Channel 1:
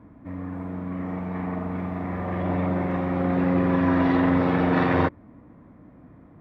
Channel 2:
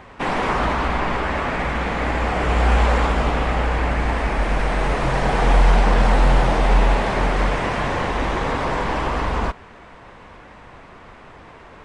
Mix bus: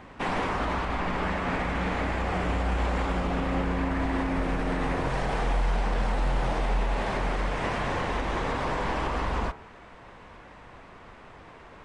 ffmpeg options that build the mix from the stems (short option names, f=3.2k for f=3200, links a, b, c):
-filter_complex "[0:a]volume=-5dB[a];[1:a]bandreject=f=73.9:t=h:w=4,bandreject=f=147.8:t=h:w=4,bandreject=f=221.7:t=h:w=4,bandreject=f=295.6:t=h:w=4,bandreject=f=369.5:t=h:w=4,bandreject=f=443.4:t=h:w=4,bandreject=f=517.3:t=h:w=4,bandreject=f=591.2:t=h:w=4,bandreject=f=665.1:t=h:w=4,bandreject=f=739:t=h:w=4,bandreject=f=812.9:t=h:w=4,bandreject=f=886.8:t=h:w=4,bandreject=f=960.7:t=h:w=4,bandreject=f=1.0346k:t=h:w=4,bandreject=f=1.1085k:t=h:w=4,bandreject=f=1.1824k:t=h:w=4,bandreject=f=1.2563k:t=h:w=4,bandreject=f=1.3302k:t=h:w=4,bandreject=f=1.4041k:t=h:w=4,bandreject=f=1.478k:t=h:w=4,bandreject=f=1.5519k:t=h:w=4,bandreject=f=1.6258k:t=h:w=4,bandreject=f=1.6997k:t=h:w=4,bandreject=f=1.7736k:t=h:w=4,bandreject=f=1.8475k:t=h:w=4,bandreject=f=1.9214k:t=h:w=4,bandreject=f=1.9953k:t=h:w=4,bandreject=f=2.0692k:t=h:w=4,bandreject=f=2.1431k:t=h:w=4,bandreject=f=2.217k:t=h:w=4,bandreject=f=2.2909k:t=h:w=4,bandreject=f=2.3648k:t=h:w=4,bandreject=f=2.4387k:t=h:w=4,bandreject=f=2.5126k:t=h:w=4,volume=-5dB[b];[a][b]amix=inputs=2:normalize=0,alimiter=limit=-18.5dB:level=0:latency=1:release=146"